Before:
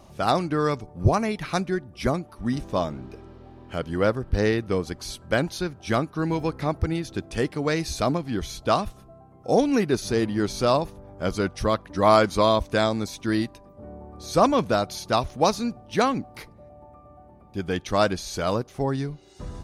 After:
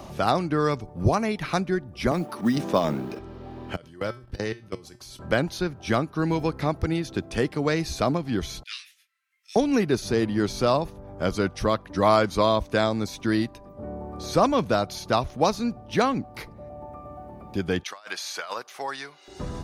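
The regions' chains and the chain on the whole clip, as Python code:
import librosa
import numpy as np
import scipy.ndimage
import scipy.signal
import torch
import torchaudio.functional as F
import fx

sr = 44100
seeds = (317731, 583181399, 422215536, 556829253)

y = fx.chain(x, sr, fx.highpass(hz=150.0, slope=24),
    fx.transient(attack_db=6, sustain_db=10),
    fx.mod_noise(seeds[0], snr_db=33), at=(2.11, 3.19))
y = fx.chain(y, sr, fx.level_steps(step_db=22),
    fx.high_shelf(hz=3700.0, db=9.0),
    fx.comb_fb(f0_hz=120.0, decay_s=0.29, harmonics='odd', damping=0.0, mix_pct=70), at=(3.76, 5.19))
y = fx.chain(y, sr, fx.steep_highpass(hz=1900.0, slope=48),
    fx.detune_double(cents=35), at=(8.63, 9.56))
y = fx.chain(y, sr, fx.highpass(hz=1200.0, slope=12),
    fx.over_compress(threshold_db=-36.0, ratio=-0.5), at=(17.83, 19.28))
y = fx.peak_eq(y, sr, hz=8700.0, db=-3.5, octaves=0.89)
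y = fx.band_squash(y, sr, depth_pct=40)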